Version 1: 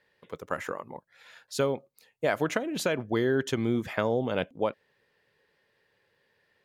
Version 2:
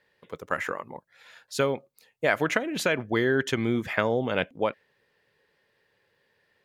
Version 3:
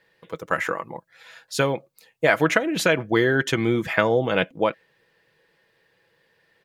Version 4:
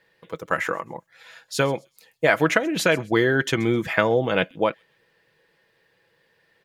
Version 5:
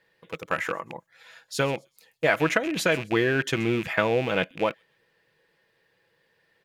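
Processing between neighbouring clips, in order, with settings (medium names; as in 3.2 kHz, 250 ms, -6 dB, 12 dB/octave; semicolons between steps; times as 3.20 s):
dynamic bell 2 kHz, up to +7 dB, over -47 dBFS, Q 1.1; trim +1 dB
comb 6.1 ms, depth 40%; trim +4.5 dB
feedback echo behind a high-pass 130 ms, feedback 32%, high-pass 5.2 kHz, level -17 dB
rattle on loud lows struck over -36 dBFS, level -20 dBFS; trim -3.5 dB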